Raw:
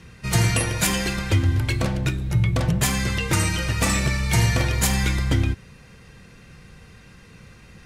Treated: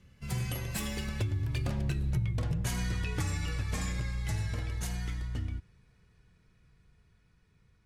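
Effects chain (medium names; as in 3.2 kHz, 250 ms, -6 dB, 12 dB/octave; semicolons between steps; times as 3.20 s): Doppler pass-by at 2.25 s, 29 m/s, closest 8.5 m; bass shelf 130 Hz +9.5 dB; compression 8:1, threshold -28 dBFS, peak gain reduction 17.5 dB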